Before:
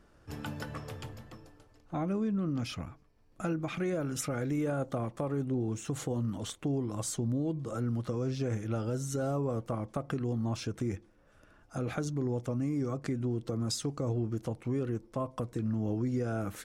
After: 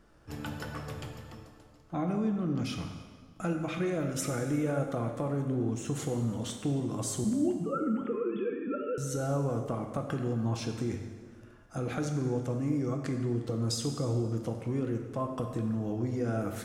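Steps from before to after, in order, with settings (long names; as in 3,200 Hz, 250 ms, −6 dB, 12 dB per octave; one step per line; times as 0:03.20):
0:07.24–0:08.98: three sine waves on the formant tracks
dense smooth reverb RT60 1.6 s, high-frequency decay 0.85×, DRR 3.5 dB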